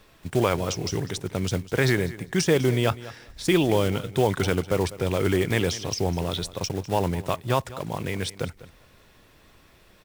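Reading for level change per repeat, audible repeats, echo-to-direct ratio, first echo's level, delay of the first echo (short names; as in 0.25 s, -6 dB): -15.5 dB, 2, -17.0 dB, -17.0 dB, 0.2 s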